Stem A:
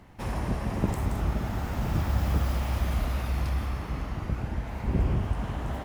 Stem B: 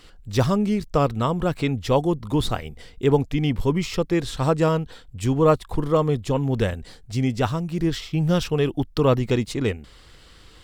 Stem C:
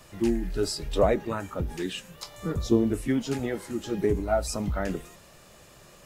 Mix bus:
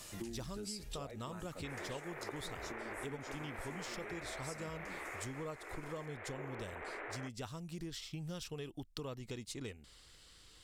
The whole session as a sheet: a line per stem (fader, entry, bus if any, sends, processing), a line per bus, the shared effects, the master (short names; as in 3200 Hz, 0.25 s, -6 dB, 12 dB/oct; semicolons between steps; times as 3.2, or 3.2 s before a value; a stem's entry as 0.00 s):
+0.5 dB, 1.45 s, no send, minimum comb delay 0.49 ms; elliptic band-pass 380–2300 Hz
-15.5 dB, 0.00 s, no send, dry
-4.5 dB, 0.00 s, no send, compressor, threshold -28 dBFS, peak gain reduction 12 dB; auto duck -9 dB, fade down 1.90 s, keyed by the second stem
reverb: off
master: bell 8700 Hz +12 dB 2.5 oct; compressor 6:1, threshold -41 dBFS, peak gain reduction 14 dB